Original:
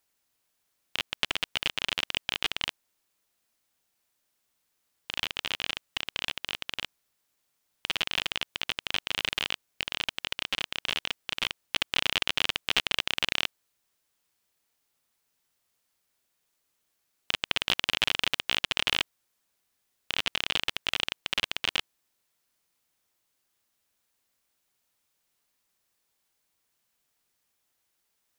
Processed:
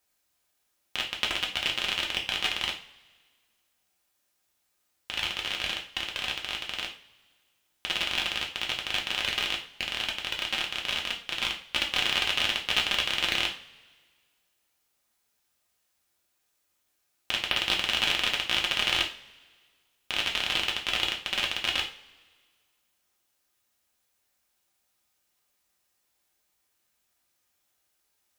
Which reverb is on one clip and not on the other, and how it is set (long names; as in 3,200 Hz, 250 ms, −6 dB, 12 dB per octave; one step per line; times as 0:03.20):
coupled-rooms reverb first 0.36 s, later 1.7 s, from −22 dB, DRR −1 dB
level −1.5 dB